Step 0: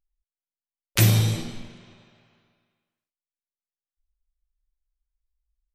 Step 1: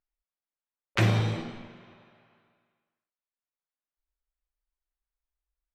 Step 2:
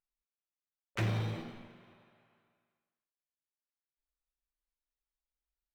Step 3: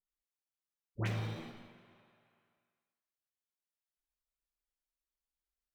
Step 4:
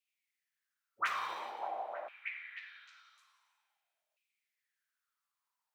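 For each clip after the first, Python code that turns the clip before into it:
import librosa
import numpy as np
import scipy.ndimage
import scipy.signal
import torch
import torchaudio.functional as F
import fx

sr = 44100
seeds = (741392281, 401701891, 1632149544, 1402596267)

y1 = scipy.signal.sosfilt(scipy.signal.butter(2, 1400.0, 'lowpass', fs=sr, output='sos'), x)
y1 = fx.tilt_eq(y1, sr, slope=3.0)
y1 = F.gain(torch.from_numpy(y1), 3.5).numpy()
y2 = scipy.signal.medfilt(y1, 5)
y2 = 10.0 ** (-18.0 / 20.0) * np.tanh(y2 / 10.0 ** (-18.0 / 20.0))
y2 = F.gain(torch.from_numpy(y2), -7.0).numpy()
y3 = fx.dispersion(y2, sr, late='highs', ms=86.0, hz=1000.0)
y3 = F.gain(torch.from_numpy(y3), -3.5).numpy()
y4 = fx.echo_stepped(y3, sr, ms=303, hz=450.0, octaves=0.7, feedback_pct=70, wet_db=-0.5)
y4 = fx.filter_lfo_highpass(y4, sr, shape='saw_down', hz=0.48, low_hz=600.0, high_hz=2600.0, q=7.1)
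y4 = F.gain(torch.from_numpy(y4), 2.5).numpy()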